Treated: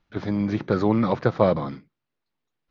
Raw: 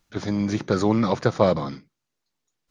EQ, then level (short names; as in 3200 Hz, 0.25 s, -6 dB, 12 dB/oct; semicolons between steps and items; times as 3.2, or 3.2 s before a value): LPF 4200 Hz 12 dB/oct; air absorption 120 m; 0.0 dB